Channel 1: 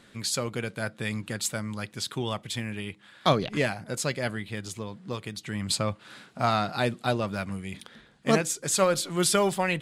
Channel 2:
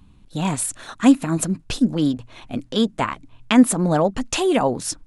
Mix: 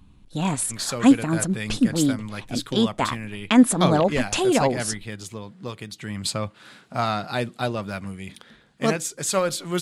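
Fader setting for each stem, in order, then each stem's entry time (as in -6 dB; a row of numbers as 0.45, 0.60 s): +0.5, -1.5 dB; 0.55, 0.00 s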